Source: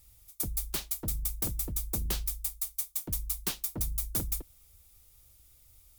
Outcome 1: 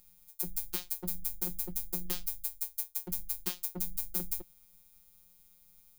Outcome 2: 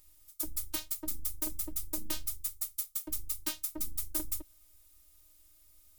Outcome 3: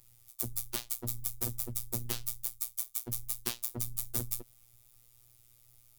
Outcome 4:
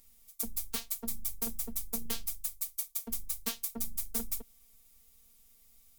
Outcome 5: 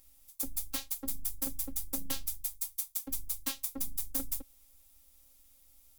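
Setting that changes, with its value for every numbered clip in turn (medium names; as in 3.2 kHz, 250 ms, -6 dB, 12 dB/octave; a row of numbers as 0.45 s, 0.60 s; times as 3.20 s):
robot voice, frequency: 180 Hz, 310 Hz, 120 Hz, 230 Hz, 270 Hz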